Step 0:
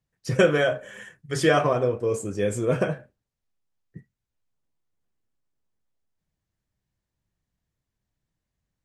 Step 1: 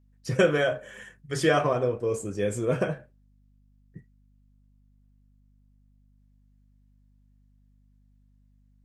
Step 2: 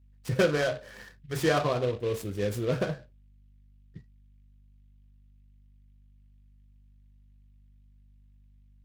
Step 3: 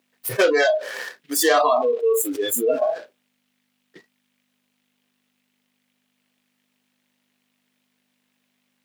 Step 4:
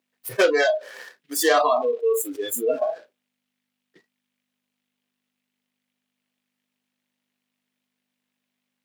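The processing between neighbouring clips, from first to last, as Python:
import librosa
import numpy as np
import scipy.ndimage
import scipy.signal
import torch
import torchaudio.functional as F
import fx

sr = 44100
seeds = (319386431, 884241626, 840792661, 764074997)

y1 = fx.add_hum(x, sr, base_hz=50, snr_db=30)
y1 = y1 * 10.0 ** (-2.5 / 20.0)
y2 = fx.peak_eq(y1, sr, hz=65.0, db=12.0, octaves=0.99)
y2 = fx.noise_mod_delay(y2, sr, seeds[0], noise_hz=2500.0, depth_ms=0.036)
y2 = y2 * 10.0 ** (-3.0 / 20.0)
y3 = scipy.signal.sosfilt(scipy.signal.butter(4, 380.0, 'highpass', fs=sr, output='sos'), y2)
y3 = fx.noise_reduce_blind(y3, sr, reduce_db=30)
y3 = fx.env_flatten(y3, sr, amount_pct=70)
y3 = y3 * 10.0 ** (6.5 / 20.0)
y4 = fx.upward_expand(y3, sr, threshold_db=-32.0, expansion=1.5)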